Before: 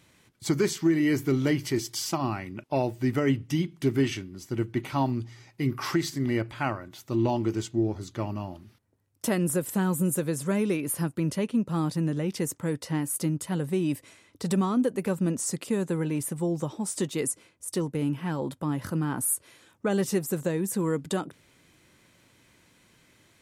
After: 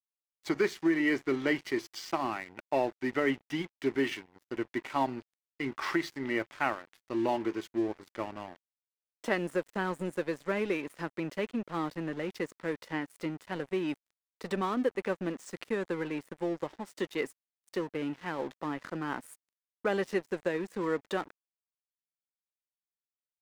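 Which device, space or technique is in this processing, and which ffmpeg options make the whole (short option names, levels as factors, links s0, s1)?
pocket radio on a weak battery: -af "highpass=340,lowpass=3800,aeval=exprs='sgn(val(0))*max(abs(val(0))-0.00531,0)':c=same,equalizer=f=1900:t=o:w=0.54:g=4.5"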